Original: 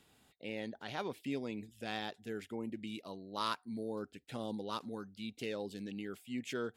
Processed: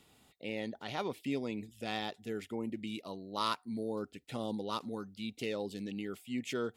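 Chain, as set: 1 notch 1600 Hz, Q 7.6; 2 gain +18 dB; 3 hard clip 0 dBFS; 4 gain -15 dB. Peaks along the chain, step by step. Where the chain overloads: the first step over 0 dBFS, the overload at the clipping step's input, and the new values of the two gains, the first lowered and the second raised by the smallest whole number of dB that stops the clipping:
-20.5, -2.5, -2.5, -17.5 dBFS; no overload

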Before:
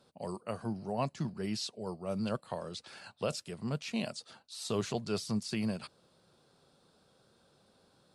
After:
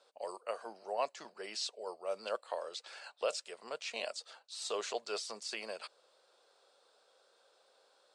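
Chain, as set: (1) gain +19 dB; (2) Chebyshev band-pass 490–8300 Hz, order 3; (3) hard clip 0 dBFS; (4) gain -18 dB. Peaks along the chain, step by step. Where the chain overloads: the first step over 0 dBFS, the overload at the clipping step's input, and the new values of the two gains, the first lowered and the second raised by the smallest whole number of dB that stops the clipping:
-2.5, -3.0, -3.0, -21.0 dBFS; no overload

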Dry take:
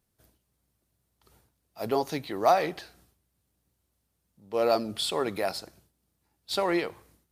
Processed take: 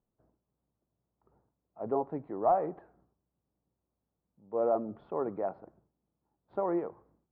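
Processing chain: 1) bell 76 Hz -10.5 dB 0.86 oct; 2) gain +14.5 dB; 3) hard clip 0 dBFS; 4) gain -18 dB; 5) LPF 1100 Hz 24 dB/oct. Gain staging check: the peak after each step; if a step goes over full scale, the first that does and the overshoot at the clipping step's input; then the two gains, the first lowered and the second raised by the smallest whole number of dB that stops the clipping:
-10.0, +4.5, 0.0, -18.0, -17.5 dBFS; step 2, 4.5 dB; step 2 +9.5 dB, step 4 -13 dB

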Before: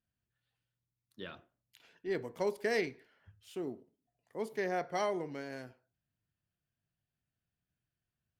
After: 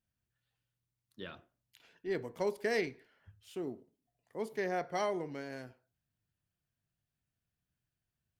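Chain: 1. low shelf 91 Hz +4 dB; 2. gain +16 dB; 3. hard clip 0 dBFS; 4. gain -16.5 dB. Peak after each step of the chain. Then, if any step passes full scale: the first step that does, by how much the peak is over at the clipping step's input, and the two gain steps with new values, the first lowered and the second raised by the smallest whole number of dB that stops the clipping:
-20.0, -4.0, -4.0, -20.5 dBFS; no overload

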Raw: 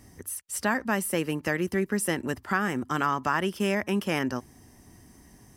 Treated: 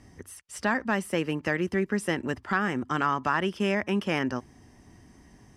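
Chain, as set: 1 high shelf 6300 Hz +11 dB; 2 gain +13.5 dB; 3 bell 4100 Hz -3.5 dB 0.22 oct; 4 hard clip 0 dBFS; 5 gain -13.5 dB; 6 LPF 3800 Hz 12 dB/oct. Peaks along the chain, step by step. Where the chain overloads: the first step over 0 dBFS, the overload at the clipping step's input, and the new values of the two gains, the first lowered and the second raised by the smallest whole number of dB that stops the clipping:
-10.5, +3.0, +3.0, 0.0, -13.5, -13.0 dBFS; step 2, 3.0 dB; step 2 +10.5 dB, step 5 -10.5 dB

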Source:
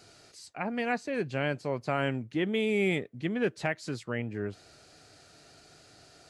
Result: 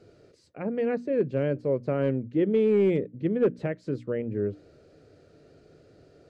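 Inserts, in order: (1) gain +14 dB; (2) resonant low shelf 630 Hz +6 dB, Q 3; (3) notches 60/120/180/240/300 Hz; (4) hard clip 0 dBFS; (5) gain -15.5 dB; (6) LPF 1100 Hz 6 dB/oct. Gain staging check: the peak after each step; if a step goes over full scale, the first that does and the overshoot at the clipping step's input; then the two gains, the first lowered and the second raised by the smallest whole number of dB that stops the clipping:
-1.5, +5.0, +4.0, 0.0, -15.5, -15.5 dBFS; step 2, 4.0 dB; step 1 +10 dB, step 5 -11.5 dB

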